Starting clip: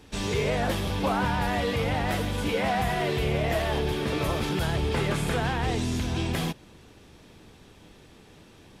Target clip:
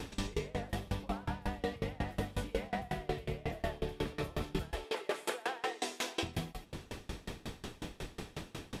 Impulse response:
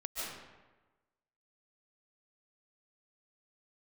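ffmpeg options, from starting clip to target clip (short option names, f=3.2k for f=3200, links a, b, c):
-filter_complex "[0:a]asettb=1/sr,asplit=3[a][b][c];[a]atrim=end=4.714[d];[b]atrim=start=4.71:end=6.23,asetpts=PTS-STARTPTS,afade=t=in:d=0.004:c=qsin,afade=t=out:st=1.516:d=0.004:c=qsin,highpass=f=390:w=0.5412,highpass=f=390:w=1.3066[e];[c]atrim=start=6.226[f];[d][e]acrossfade=d=0.004:c1=hsin:c2=qsin[g];[g][f]acrossfade=d=0.004:c1=qsin:c2=hsin,acrossover=split=620[h][i];[i]alimiter=level_in=2dB:limit=-24dB:level=0:latency=1:release=476,volume=-2dB[j];[h][j]amix=inputs=2:normalize=0,acompressor=threshold=-41dB:ratio=16[k];[1:a]atrim=start_sample=2205,afade=t=out:st=0.18:d=0.01,atrim=end_sample=8379[l];[k][l]afir=irnorm=-1:irlink=0,aeval=exprs='val(0)*pow(10,-27*if(lt(mod(5.5*n/s,1),2*abs(5.5)/1000),1-mod(5.5*n/s,1)/(2*abs(5.5)/1000),(mod(5.5*n/s,1)-2*abs(5.5)/1000)/(1-2*abs(5.5)/1000))/20)':c=same,volume=18dB"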